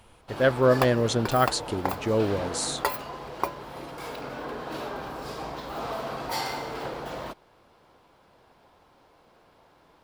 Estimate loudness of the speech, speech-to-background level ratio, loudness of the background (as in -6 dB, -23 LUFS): -25.0 LUFS, 9.0 dB, -34.0 LUFS